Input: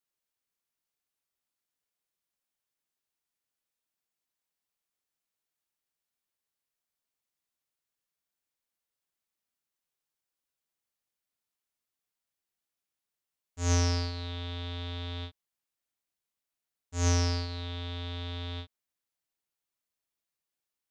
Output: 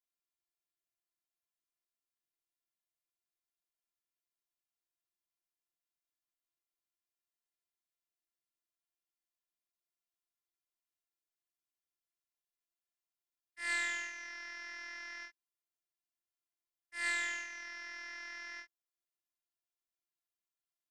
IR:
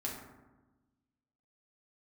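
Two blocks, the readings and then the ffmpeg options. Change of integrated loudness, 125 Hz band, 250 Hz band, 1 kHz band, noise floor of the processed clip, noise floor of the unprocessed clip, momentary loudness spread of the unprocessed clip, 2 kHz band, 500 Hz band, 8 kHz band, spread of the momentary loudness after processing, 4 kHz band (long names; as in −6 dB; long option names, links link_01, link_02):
−6.5 dB, below −40 dB, −24.0 dB, −8.5 dB, below −85 dBFS, below −85 dBFS, 14 LU, +7.5 dB, −19.0 dB, −9.5 dB, 14 LU, −9.5 dB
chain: -af "aeval=exprs='val(0)*sin(2*PI*1900*n/s)':channel_layout=same,afftfilt=real='hypot(re,im)*cos(PI*b)':imag='0':win_size=512:overlap=0.75,volume=-3dB"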